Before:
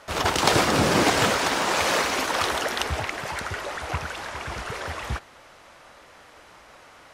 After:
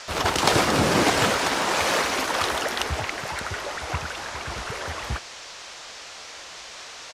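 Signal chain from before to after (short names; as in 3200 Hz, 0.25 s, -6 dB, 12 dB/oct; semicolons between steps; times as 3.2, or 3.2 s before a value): downsampling 32000 Hz; band noise 460–6500 Hz -41 dBFS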